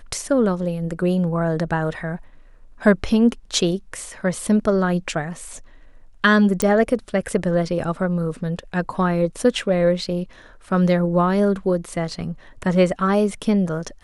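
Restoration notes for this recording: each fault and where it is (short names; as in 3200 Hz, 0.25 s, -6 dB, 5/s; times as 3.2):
6.62 pop -7 dBFS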